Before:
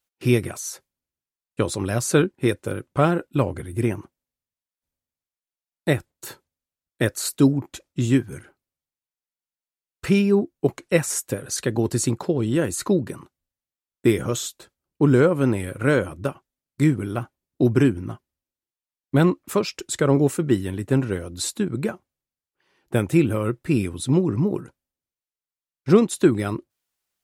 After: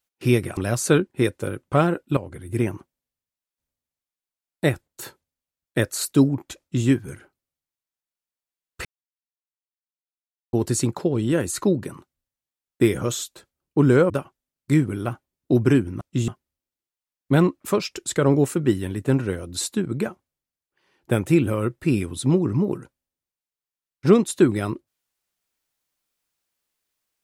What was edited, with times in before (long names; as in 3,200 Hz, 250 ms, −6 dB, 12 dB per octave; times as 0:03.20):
0:00.57–0:01.81: remove
0:03.41–0:03.87: fade in, from −12.5 dB
0:07.84–0:08.11: duplicate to 0:18.11
0:10.09–0:11.77: silence
0:15.34–0:16.20: remove